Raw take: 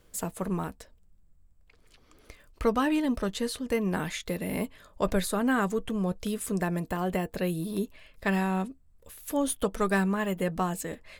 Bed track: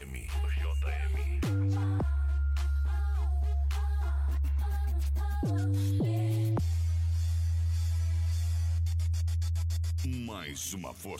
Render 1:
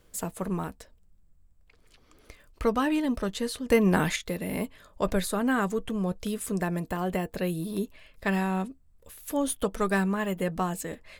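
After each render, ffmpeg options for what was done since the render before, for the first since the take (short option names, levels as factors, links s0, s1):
-filter_complex "[0:a]asplit=3[s0][s1][s2];[s0]atrim=end=3.702[s3];[s1]atrim=start=3.698:end=4.162,asetpts=PTS-STARTPTS,volume=2.11[s4];[s2]atrim=start=4.158[s5];[s3][s4]acrossfade=d=0.004:c1=hsin:c2=hsin[s6];[s6][s5]acrossfade=d=0.004:c1=hsin:c2=hsin"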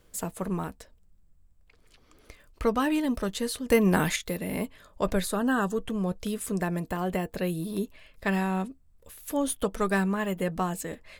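-filter_complex "[0:a]asettb=1/sr,asplit=3[s0][s1][s2];[s0]atrim=end=2.804[s3];[s1]atrim=start=2.8:end=4.4,asetpts=PTS-STARTPTS,afade=t=in:d=0.004:c=qsin,afade=t=out:st=1.596:d=0.004:c=qsin,highshelf=f=8600:g=6.5[s4];[s2]atrim=start=4.396[s5];[s3][s4]acrossfade=d=0.004:c1=hsin:c2=qsin[s6];[s6][s5]acrossfade=d=0.004:c1=qsin:c2=hsin,asettb=1/sr,asplit=3[s7][s8][s9];[s7]atrim=end=5.364[s10];[s8]atrim=start=5.36:end=5.76,asetpts=PTS-STARTPTS,afade=t=in:d=0.004:c=qsin,afade=t=out:st=0.396:d=0.004:c=qsin,asuperstop=centerf=2200:order=12:qfactor=3.6[s11];[s9]atrim=start=5.756[s12];[s10][s11]acrossfade=d=0.004:c1=hsin:c2=qsin[s13];[s13][s12]acrossfade=d=0.004:c1=qsin:c2=hsin"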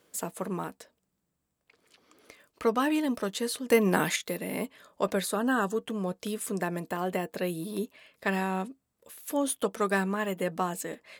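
-af "highpass=220"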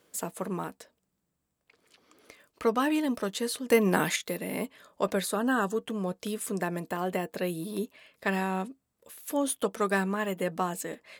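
-af anull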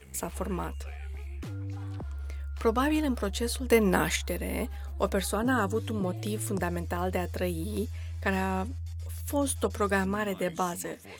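-filter_complex "[1:a]volume=0.398[s0];[0:a][s0]amix=inputs=2:normalize=0"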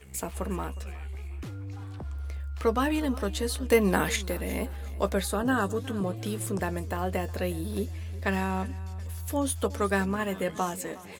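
-filter_complex "[0:a]asplit=2[s0][s1];[s1]adelay=15,volume=0.2[s2];[s0][s2]amix=inputs=2:normalize=0,aecho=1:1:362|724|1086:0.112|0.0426|0.0162"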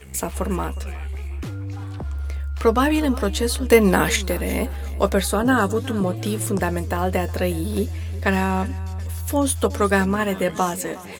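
-af "volume=2.51,alimiter=limit=0.794:level=0:latency=1"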